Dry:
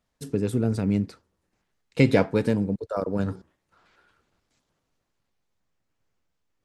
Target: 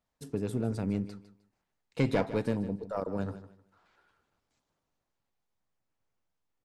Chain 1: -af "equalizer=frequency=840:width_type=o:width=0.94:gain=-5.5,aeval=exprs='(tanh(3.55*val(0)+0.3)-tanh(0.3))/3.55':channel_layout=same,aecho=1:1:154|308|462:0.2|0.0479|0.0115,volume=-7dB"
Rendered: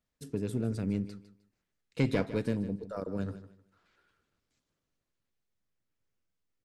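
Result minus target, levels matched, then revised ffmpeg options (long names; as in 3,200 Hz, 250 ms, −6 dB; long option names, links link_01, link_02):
1,000 Hz band −5.0 dB
-af "equalizer=frequency=840:width_type=o:width=0.94:gain=4.5,aeval=exprs='(tanh(3.55*val(0)+0.3)-tanh(0.3))/3.55':channel_layout=same,aecho=1:1:154|308|462:0.2|0.0479|0.0115,volume=-7dB"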